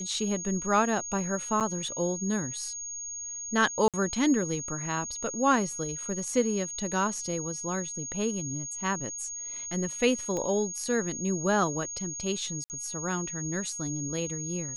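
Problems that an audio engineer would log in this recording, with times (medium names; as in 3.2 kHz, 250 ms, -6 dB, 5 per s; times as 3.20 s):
whine 6.6 kHz -35 dBFS
1.60–1.61 s: dropout 7.6 ms
3.88–3.94 s: dropout 57 ms
10.37 s: pop -21 dBFS
12.64–12.70 s: dropout 59 ms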